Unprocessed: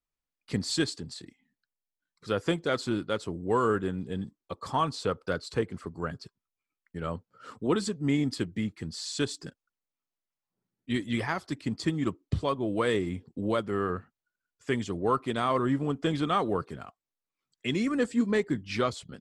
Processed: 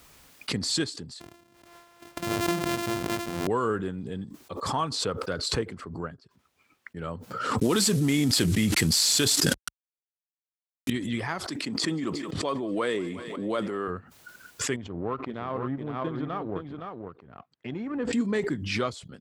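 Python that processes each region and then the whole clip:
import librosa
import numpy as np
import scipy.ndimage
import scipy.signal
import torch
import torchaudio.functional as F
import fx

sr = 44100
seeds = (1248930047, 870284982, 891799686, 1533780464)

y = fx.chain(x, sr, fx.sample_sort(block=128),
    fx.sustainer(db_per_s=72.0), at=(1.2, 3.47))
y = fx.chain(y, sr, fx.high_shelf(hz=5600.0, db=-11.5),
    fx.upward_expand(threshold_db=-53.0, expansion=1.5), at=(5.74, 6.97))
y = fx.chain(y, sr, fx.cvsd(bps=64000),
    fx.high_shelf(hz=3000.0, db=12.0),
    fx.env_flatten(amount_pct=100), at=(7.61, 10.9))
y = fx.chain(y, sr, fx.highpass(hz=220.0, slope=12),
    fx.echo_thinned(ms=178, feedback_pct=74, hz=280.0, wet_db=-22),
    fx.sustainer(db_per_s=42.0), at=(11.47, 13.88))
y = fx.chain(y, sr, fx.power_curve(exponent=1.4),
    fx.spacing_loss(db_at_10k=36),
    fx.echo_single(ms=514, db=-5.5), at=(14.76, 18.13))
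y = scipy.signal.sosfilt(scipy.signal.butter(2, 52.0, 'highpass', fs=sr, output='sos'), y)
y = fx.pre_swell(y, sr, db_per_s=42.0)
y = y * 10.0 ** (-1.5 / 20.0)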